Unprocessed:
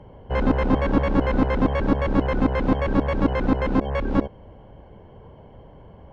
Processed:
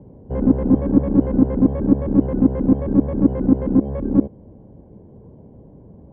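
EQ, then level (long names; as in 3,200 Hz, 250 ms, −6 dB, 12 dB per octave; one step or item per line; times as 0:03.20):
resonant band-pass 260 Hz, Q 1.2
high-frequency loss of the air 58 metres
spectral tilt −2.5 dB per octave
+2.5 dB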